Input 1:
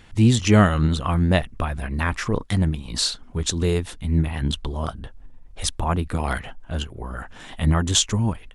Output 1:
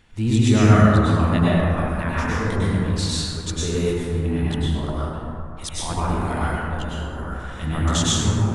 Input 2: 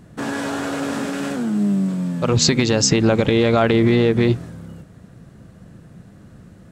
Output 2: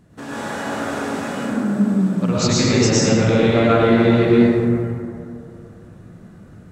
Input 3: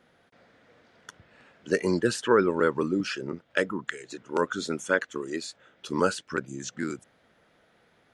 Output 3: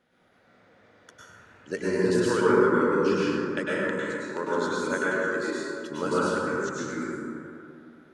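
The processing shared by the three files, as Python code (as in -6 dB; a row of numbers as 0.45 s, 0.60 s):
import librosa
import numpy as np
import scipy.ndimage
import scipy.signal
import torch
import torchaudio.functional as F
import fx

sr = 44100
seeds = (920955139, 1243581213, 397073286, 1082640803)

y = fx.rev_plate(x, sr, seeds[0], rt60_s=2.6, hf_ratio=0.35, predelay_ms=90, drr_db=-8.5)
y = y * 10.0 ** (-7.5 / 20.0)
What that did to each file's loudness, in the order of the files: +1.5 LU, +1.0 LU, +2.0 LU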